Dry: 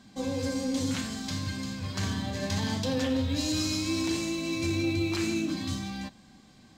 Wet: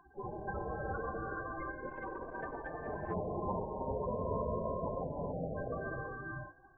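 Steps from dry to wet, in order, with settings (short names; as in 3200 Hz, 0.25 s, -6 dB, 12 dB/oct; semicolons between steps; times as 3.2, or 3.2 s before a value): one-sided fold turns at -31 dBFS; polynomial smoothing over 41 samples; loudest bins only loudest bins 16; low shelf 87 Hz -5 dB; spectral gate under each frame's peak -20 dB weak; non-linear reverb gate 0.45 s rising, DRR -1 dB; 1.87–3.14 core saturation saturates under 300 Hz; gain +15 dB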